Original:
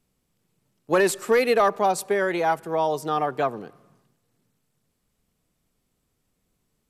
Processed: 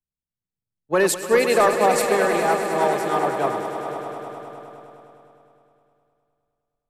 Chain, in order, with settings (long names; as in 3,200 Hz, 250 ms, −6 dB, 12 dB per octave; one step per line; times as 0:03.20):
feedback delay that plays each chunk backwards 333 ms, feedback 48%, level −11.5 dB
echo that builds up and dies away 103 ms, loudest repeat 5, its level −10.5 dB
multiband upward and downward expander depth 70%